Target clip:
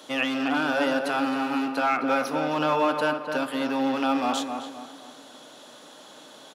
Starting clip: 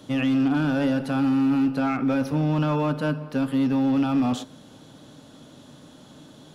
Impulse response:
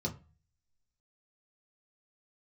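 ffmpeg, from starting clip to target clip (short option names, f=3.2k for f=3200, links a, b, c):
-filter_complex "[0:a]highpass=560,asplit=2[a][b];[b]adelay=262,lowpass=f=1.9k:p=1,volume=-5.5dB,asplit=2[c][d];[d]adelay=262,lowpass=f=1.9k:p=1,volume=0.4,asplit=2[e][f];[f]adelay=262,lowpass=f=1.9k:p=1,volume=0.4,asplit=2[g][h];[h]adelay=262,lowpass=f=1.9k:p=1,volume=0.4,asplit=2[i][j];[j]adelay=262,lowpass=f=1.9k:p=1,volume=0.4[k];[a][c][e][g][i][k]amix=inputs=6:normalize=0,volume=5.5dB"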